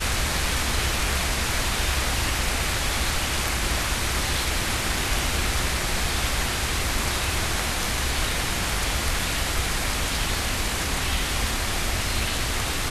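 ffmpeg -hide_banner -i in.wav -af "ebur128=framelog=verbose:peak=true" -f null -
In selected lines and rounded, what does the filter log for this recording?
Integrated loudness:
  I:         -24.3 LUFS
  Threshold: -34.3 LUFS
Loudness range:
  LRA:         0.9 LU
  Threshold: -44.3 LUFS
  LRA low:   -24.8 LUFS
  LRA high:  -23.9 LUFS
True peak:
  Peak:      -11.0 dBFS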